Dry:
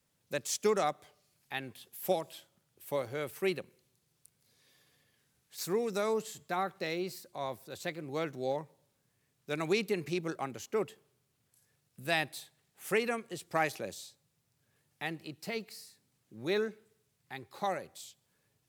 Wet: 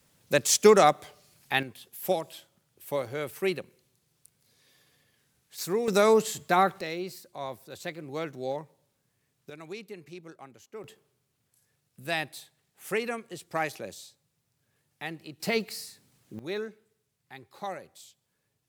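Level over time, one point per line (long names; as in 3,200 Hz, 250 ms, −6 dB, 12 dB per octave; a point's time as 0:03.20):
+11.5 dB
from 0:01.63 +3.5 dB
from 0:05.88 +11 dB
from 0:06.81 +1 dB
from 0:09.50 −10.5 dB
from 0:10.84 +0.5 dB
from 0:15.40 +10 dB
from 0:16.39 −2.5 dB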